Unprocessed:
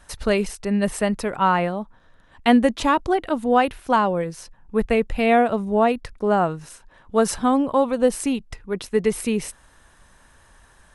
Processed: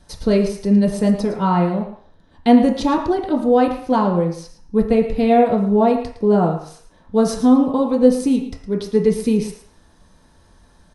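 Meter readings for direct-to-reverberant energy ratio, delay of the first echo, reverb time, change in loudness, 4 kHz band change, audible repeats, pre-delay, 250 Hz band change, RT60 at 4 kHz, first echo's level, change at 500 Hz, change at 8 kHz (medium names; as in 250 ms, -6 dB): -0.5 dB, 112 ms, 0.55 s, +4.0 dB, -1.5 dB, 1, 3 ms, +6.5 dB, 0.60 s, -12.5 dB, +3.5 dB, -3.5 dB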